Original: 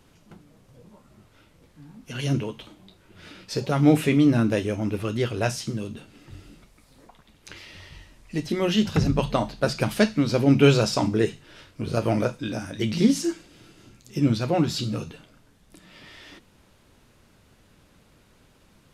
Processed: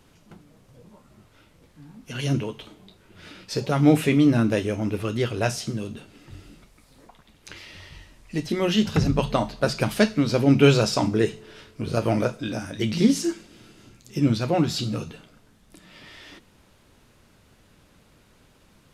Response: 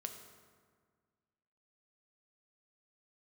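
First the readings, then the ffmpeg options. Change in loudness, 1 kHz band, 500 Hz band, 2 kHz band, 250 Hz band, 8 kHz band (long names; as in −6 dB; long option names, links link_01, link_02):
+0.5 dB, +1.0 dB, +0.5 dB, +1.0 dB, +0.5 dB, +1.0 dB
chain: -filter_complex "[0:a]asplit=2[link_01][link_02];[1:a]atrim=start_sample=2205,lowshelf=frequency=320:gain=-10[link_03];[link_02][link_03]afir=irnorm=-1:irlink=0,volume=-14dB[link_04];[link_01][link_04]amix=inputs=2:normalize=0"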